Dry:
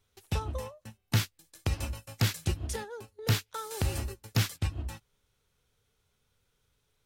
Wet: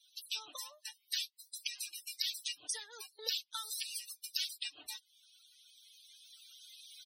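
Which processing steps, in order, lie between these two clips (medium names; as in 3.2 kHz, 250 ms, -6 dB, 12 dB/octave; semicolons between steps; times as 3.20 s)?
recorder AGC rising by 6.1 dB/s; high-pass 810 Hz 6 dB/octave; peaking EQ 3.9 kHz +7 dB 1.2 oct; band-stop 7 kHz, Q 8.1; harmonic-percussive split harmonic -9 dB; tilt EQ +3.5 dB/octave; comb 6.7 ms, depth 54%; compression 2:1, threshold -50 dBFS, peak gain reduction 17 dB; loudest bins only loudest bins 64; trim +5.5 dB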